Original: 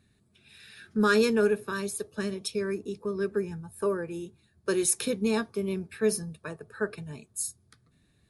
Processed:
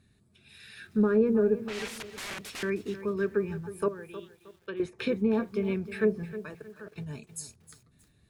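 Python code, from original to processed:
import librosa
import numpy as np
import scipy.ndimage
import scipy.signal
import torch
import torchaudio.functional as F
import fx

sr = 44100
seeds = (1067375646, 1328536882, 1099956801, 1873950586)

y = fx.low_shelf(x, sr, hz=170.0, db=3.0)
y = fx.overflow_wrap(y, sr, gain_db=35.5, at=(1.68, 2.63))
y = fx.env_lowpass_down(y, sr, base_hz=590.0, full_db=-20.0)
y = fx.level_steps(y, sr, step_db=21, at=(6.25, 6.96))
y = fx.dynamic_eq(y, sr, hz=2200.0, q=1.3, threshold_db=-53.0, ratio=4.0, max_db=7)
y = fx.ladder_lowpass(y, sr, hz=3600.0, resonance_pct=75, at=(3.88, 4.8))
y = fx.echo_crushed(y, sr, ms=313, feedback_pct=35, bits=9, wet_db=-13.5)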